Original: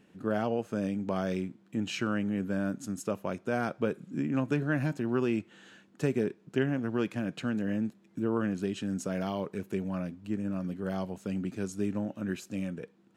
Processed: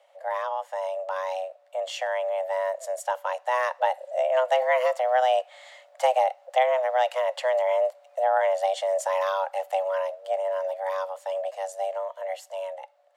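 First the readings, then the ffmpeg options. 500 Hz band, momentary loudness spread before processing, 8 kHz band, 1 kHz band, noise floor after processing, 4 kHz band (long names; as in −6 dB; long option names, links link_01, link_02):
+10.5 dB, 6 LU, +4.5 dB, +16.0 dB, −58 dBFS, +7.5 dB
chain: -af "lowshelf=frequency=120:width_type=q:width=1.5:gain=-6,dynaudnorm=framelen=460:gausssize=13:maxgain=6.5dB,afreqshift=380"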